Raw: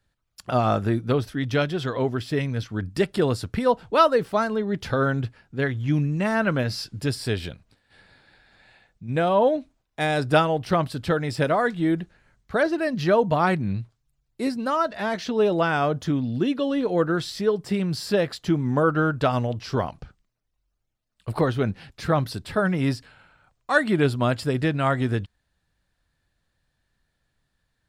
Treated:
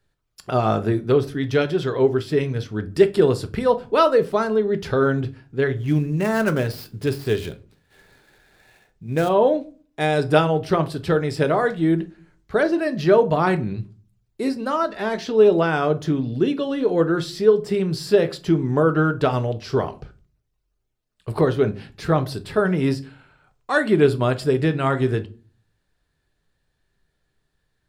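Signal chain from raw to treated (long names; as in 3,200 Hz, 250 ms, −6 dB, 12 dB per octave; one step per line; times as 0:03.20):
0:05.75–0:09.29: gap after every zero crossing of 0.062 ms
parametric band 400 Hz +11 dB 0.28 octaves
rectangular room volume 210 cubic metres, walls furnished, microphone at 0.51 metres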